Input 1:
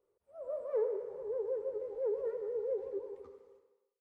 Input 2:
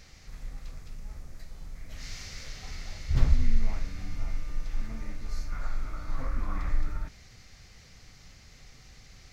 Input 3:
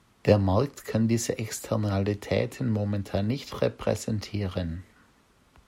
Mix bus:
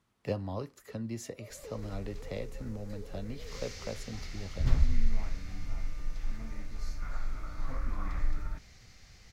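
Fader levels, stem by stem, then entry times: −15.0, −3.0, −13.5 decibels; 0.90, 1.50, 0.00 seconds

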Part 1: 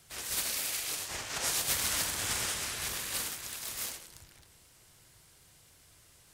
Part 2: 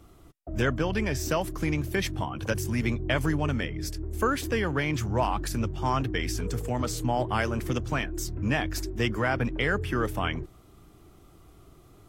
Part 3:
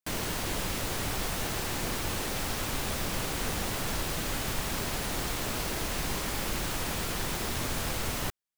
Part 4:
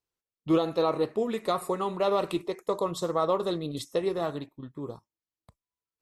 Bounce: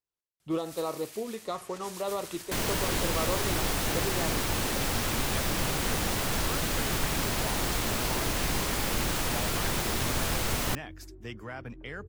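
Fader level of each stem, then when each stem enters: −13.5, −14.0, +3.0, −7.0 decibels; 0.40, 2.25, 2.45, 0.00 seconds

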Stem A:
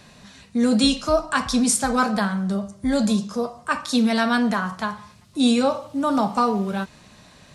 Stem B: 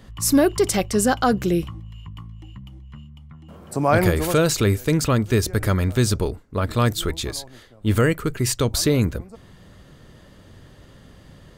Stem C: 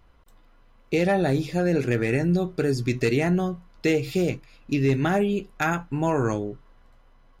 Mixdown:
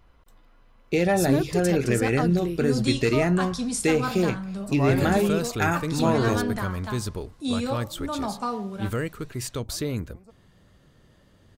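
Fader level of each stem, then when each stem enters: −9.0, −10.0, 0.0 decibels; 2.05, 0.95, 0.00 seconds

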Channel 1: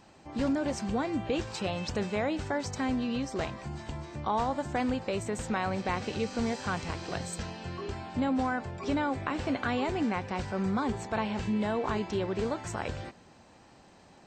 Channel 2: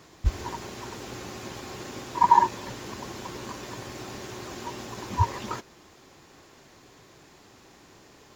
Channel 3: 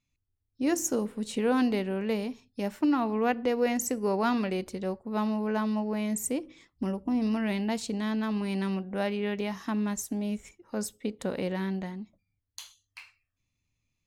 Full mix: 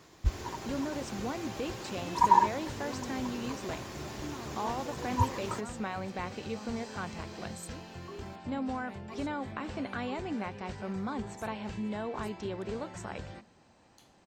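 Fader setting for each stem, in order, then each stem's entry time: −6.0, −4.0, −19.0 decibels; 0.30, 0.00, 1.40 seconds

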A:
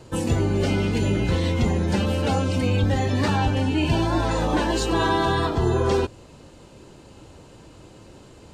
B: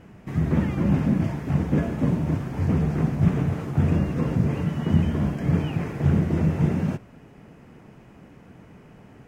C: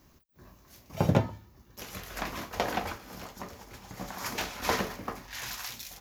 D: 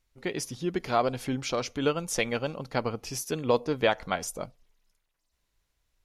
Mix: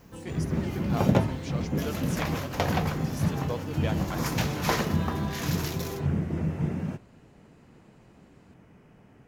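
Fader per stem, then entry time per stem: −17.0, −7.0, +1.5, −10.5 decibels; 0.00, 0.00, 0.00, 0.00 seconds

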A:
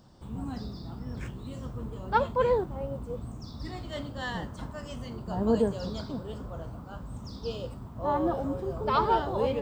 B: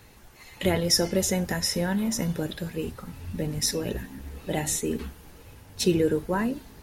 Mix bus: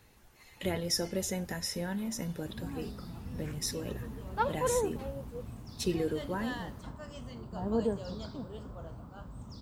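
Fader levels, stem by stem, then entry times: −5.5, −9.0 decibels; 2.25, 0.00 seconds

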